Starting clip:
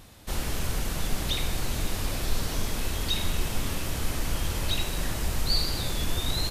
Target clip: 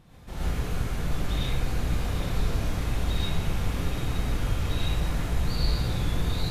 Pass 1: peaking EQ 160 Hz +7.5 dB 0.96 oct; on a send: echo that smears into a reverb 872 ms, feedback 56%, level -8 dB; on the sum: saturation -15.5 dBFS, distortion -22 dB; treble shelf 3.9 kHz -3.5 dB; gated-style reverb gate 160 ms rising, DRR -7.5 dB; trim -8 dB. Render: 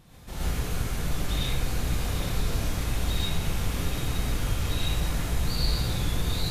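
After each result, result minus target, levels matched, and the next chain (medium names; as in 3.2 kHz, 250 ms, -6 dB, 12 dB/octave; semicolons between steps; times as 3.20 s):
saturation: distortion +20 dB; 8 kHz band +6.0 dB
peaking EQ 160 Hz +7.5 dB 0.96 oct; on a send: echo that smears into a reverb 872 ms, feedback 56%, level -8 dB; on the sum: saturation -4.5 dBFS, distortion -42 dB; treble shelf 3.9 kHz -3.5 dB; gated-style reverb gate 160 ms rising, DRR -7.5 dB; trim -8 dB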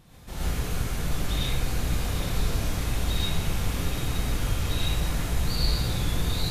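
8 kHz band +6.0 dB
peaking EQ 160 Hz +7.5 dB 0.96 oct; on a send: echo that smears into a reverb 872 ms, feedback 56%, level -8 dB; on the sum: saturation -4.5 dBFS, distortion -42 dB; treble shelf 3.9 kHz -12 dB; gated-style reverb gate 160 ms rising, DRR -7.5 dB; trim -8 dB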